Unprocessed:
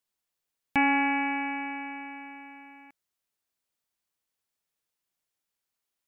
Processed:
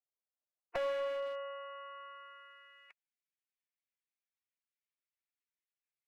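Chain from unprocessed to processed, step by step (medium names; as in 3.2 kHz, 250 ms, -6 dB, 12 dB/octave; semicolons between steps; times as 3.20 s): spectral gate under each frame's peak -15 dB weak; band-pass sweep 640 Hz -> 2.2 kHz, 1.24–3.05 s; one-sided clip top -50.5 dBFS, bottom -43 dBFS; trim +15 dB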